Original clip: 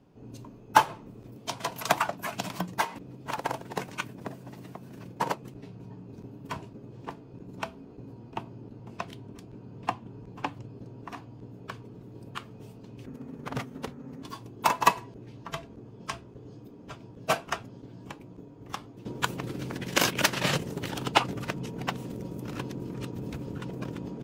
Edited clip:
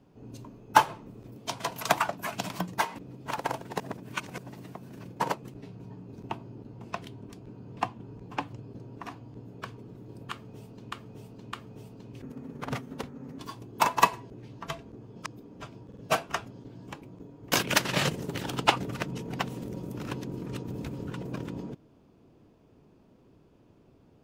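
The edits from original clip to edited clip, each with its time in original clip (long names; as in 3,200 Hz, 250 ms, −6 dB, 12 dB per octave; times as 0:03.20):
0:03.80–0:04.38: reverse
0:06.29–0:08.35: remove
0:12.37–0:12.98: repeat, 3 plays
0:16.10–0:16.54: remove
0:17.14: stutter 0.05 s, 3 plays
0:18.70–0:20.00: remove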